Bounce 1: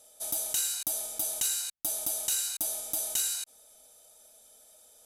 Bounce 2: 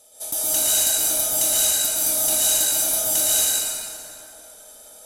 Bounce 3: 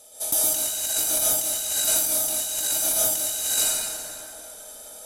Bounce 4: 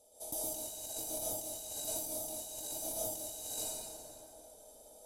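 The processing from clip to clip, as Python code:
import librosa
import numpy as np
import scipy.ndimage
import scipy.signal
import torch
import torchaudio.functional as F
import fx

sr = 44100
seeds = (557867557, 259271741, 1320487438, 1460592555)

y1 = fx.rev_plate(x, sr, seeds[0], rt60_s=3.0, hf_ratio=0.55, predelay_ms=105, drr_db=-9.0)
y1 = y1 * librosa.db_to_amplitude(4.0)
y2 = fx.over_compress(y1, sr, threshold_db=-23.0, ratio=-0.5)
y3 = fx.curve_eq(y2, sr, hz=(120.0, 180.0, 330.0, 470.0, 930.0, 1400.0, 4400.0), db=(0, -4, 0, 0, -4, -21, -10))
y3 = y3 * librosa.db_to_amplitude(-7.5)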